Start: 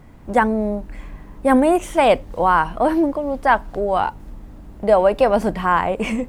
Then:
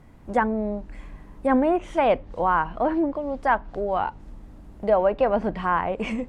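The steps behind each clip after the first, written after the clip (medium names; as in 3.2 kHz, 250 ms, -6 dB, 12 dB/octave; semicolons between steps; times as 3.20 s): low-pass that closes with the level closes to 2.5 kHz, closed at -13.5 dBFS; trim -5.5 dB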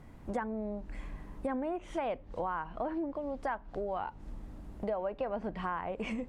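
compression 4:1, threshold -32 dBFS, peak gain reduction 14.5 dB; trim -2 dB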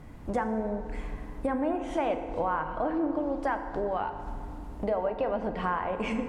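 FDN reverb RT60 2.4 s, low-frequency decay 1×, high-frequency decay 0.55×, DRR 6 dB; trim +5 dB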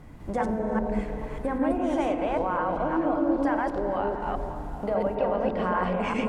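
chunks repeated in reverse 198 ms, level 0 dB; repeats whose band climbs or falls 114 ms, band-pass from 160 Hz, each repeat 0.7 oct, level -1.5 dB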